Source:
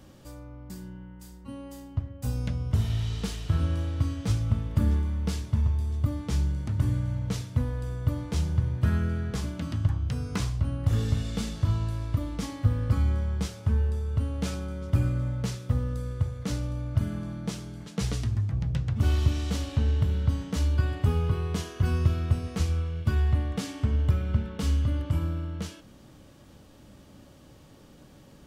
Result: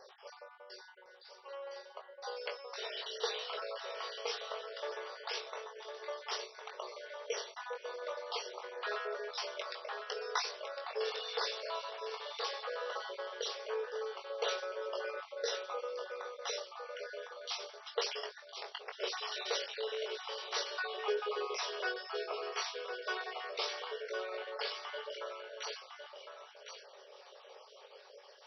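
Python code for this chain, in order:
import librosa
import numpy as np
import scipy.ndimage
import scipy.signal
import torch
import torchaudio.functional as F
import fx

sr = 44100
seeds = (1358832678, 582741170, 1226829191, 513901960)

y = fx.spec_dropout(x, sr, seeds[0], share_pct=46)
y = fx.brickwall_bandpass(y, sr, low_hz=390.0, high_hz=5900.0)
y = fx.peak_eq(y, sr, hz=1700.0, db=-2.5, octaves=0.77)
y = fx.doubler(y, sr, ms=21.0, db=-5.0)
y = y + 10.0 ** (-7.0 / 20.0) * np.pad(y, (int(1057 * sr / 1000.0), 0))[:len(y)]
y = F.gain(torch.from_numpy(y), 4.5).numpy()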